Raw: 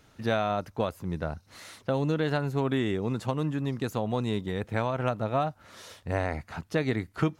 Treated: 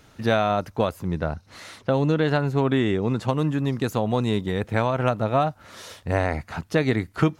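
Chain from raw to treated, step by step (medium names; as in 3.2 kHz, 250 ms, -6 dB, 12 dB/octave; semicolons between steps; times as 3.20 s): 1.07–3.28 s: treble shelf 8.7 kHz -10 dB; trim +6 dB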